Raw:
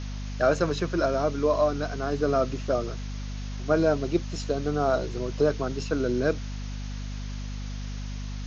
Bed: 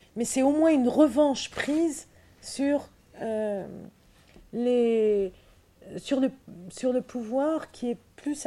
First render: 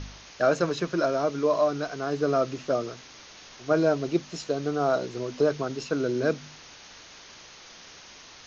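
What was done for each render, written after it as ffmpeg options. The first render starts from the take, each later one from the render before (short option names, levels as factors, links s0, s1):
-af "bandreject=f=50:t=h:w=4,bandreject=f=100:t=h:w=4,bandreject=f=150:t=h:w=4,bandreject=f=200:t=h:w=4,bandreject=f=250:t=h:w=4"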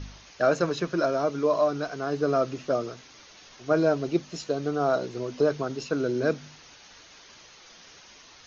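-af "afftdn=nr=6:nf=-49"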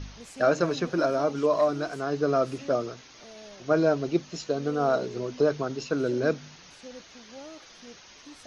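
-filter_complex "[1:a]volume=0.119[s0];[0:a][s0]amix=inputs=2:normalize=0"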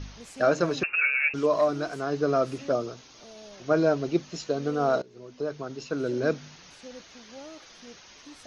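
-filter_complex "[0:a]asettb=1/sr,asplit=3[s0][s1][s2];[s0]atrim=end=0.834[s3];[s1]atrim=start=0.83:end=1.34,asetpts=PTS-STARTPTS,afade=t=in:d=0.004:c=qsin,afade=t=out:st=0.506:d=0.004:c=qsin,lowpass=f=2500:t=q:w=0.5098,lowpass=f=2500:t=q:w=0.6013,lowpass=f=2500:t=q:w=0.9,lowpass=f=2500:t=q:w=2.563,afreqshift=-2900[s4];[s2]atrim=start=1.336[s5];[s3][s4]acrossfade=d=0.004:c1=hsin:c2=qsin[s6];[s6][s5]acrossfade=d=0.004:c1=qsin:c2=hsin,asettb=1/sr,asplit=3[s7][s8][s9];[s7]atrim=end=2.724[s10];[s8]atrim=start=2.72:end=3.54,asetpts=PTS-STARTPTS,afade=t=in:d=0.004:c=qsin,afade=t=out:st=0.816:d=0.004:c=qsin,equalizer=f=1900:t=o:w=0.81:g=-5.5[s11];[s9]atrim=start=3.536[s12];[s10][s11]acrossfade=d=0.004:c1=hsin:c2=qsin[s13];[s13][s12]acrossfade=d=0.004:c1=qsin:c2=hsin,asplit=2[s14][s15];[s14]atrim=end=5.02,asetpts=PTS-STARTPTS,afade=t=out:st=5.016:d=0.004:c=hsin:silence=0.0891251[s16];[s15]atrim=start=5.02,asetpts=PTS-STARTPTS,afade=t=in:d=1.33:silence=0.0891251[s17];[s16][s17]concat=n=2:v=0:a=1"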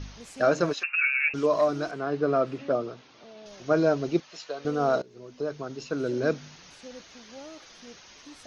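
-filter_complex "[0:a]asplit=3[s0][s1][s2];[s0]afade=t=out:st=0.72:d=0.02[s3];[s1]highpass=1200,afade=t=in:st=0.72:d=0.02,afade=t=out:st=1.26:d=0.02[s4];[s2]afade=t=in:st=1.26:d=0.02[s5];[s3][s4][s5]amix=inputs=3:normalize=0,asettb=1/sr,asplit=3[s6][s7][s8];[s6]atrim=end=1.914[s9];[s7]atrim=start=1.91:end=3.46,asetpts=PTS-STARTPTS,afade=t=in:d=0.004:c=qsin,afade=t=out:st=1.546:d=0.004:c=qsin,highpass=110,lowpass=3300[s10];[s8]atrim=start=3.456[s11];[s9][s10]acrossfade=d=0.004:c1=hsin:c2=qsin[s12];[s12][s11]acrossfade=d=0.004:c1=qsin:c2=hsin,asettb=1/sr,asplit=3[s13][s14][s15];[s13]atrim=end=4.204[s16];[s14]atrim=start=4.2:end=4.65,asetpts=PTS-STARTPTS,afade=t=in:d=0.004:c=qsin,afade=t=out:st=0.446:d=0.004:c=qsin,acrossover=split=540 5400:gain=0.1 1 0.224[s17][s18][s19];[s17][s18][s19]amix=inputs=3:normalize=0[s20];[s15]atrim=start=4.646[s21];[s16][s20]acrossfade=d=0.004:c1=hsin:c2=qsin[s22];[s22][s21]acrossfade=d=0.004:c1=qsin:c2=hsin"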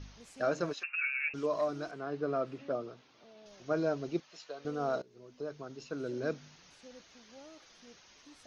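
-af "volume=0.355"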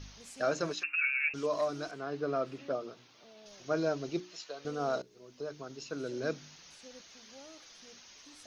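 -af "highshelf=f=3100:g=8.5,bandreject=f=60:t=h:w=6,bandreject=f=120:t=h:w=6,bandreject=f=180:t=h:w=6,bandreject=f=240:t=h:w=6,bandreject=f=300:t=h:w=6,bandreject=f=360:t=h:w=6"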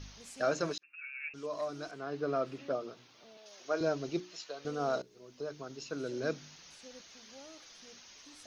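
-filter_complex "[0:a]asettb=1/sr,asplit=3[s0][s1][s2];[s0]atrim=end=3.374[s3];[s1]atrim=start=3.37:end=3.81,asetpts=PTS-STARTPTS,afade=t=in:d=0.004:c=qsin,afade=t=out:st=0.436:d=0.004:c=qsin,highpass=390[s4];[s2]atrim=start=3.806[s5];[s3][s4]acrossfade=d=0.004:c1=hsin:c2=qsin[s6];[s6][s5]acrossfade=d=0.004:c1=qsin:c2=hsin,asplit=2[s7][s8];[s7]atrim=end=0.78,asetpts=PTS-STARTPTS,afade=t=out:st=0.776:d=0.004:c=hsin[s9];[s8]atrim=start=0.78,asetpts=PTS-STARTPTS,afade=t=in:d=1.52[s10];[s9][s10]concat=n=2:v=0:a=1"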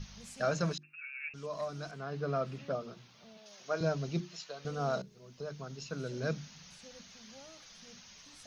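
-af "lowshelf=f=240:t=q:w=3:g=6.5,bandreject=f=50:t=h:w=6,bandreject=f=100:t=h:w=6,bandreject=f=150:t=h:w=6,bandreject=f=200:t=h:w=6,bandreject=f=250:t=h:w=6,bandreject=f=300:t=h:w=6,bandreject=f=350:t=h:w=6"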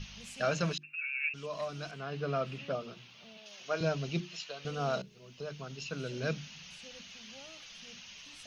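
-af "equalizer=f=2800:t=o:w=0.69:g=12"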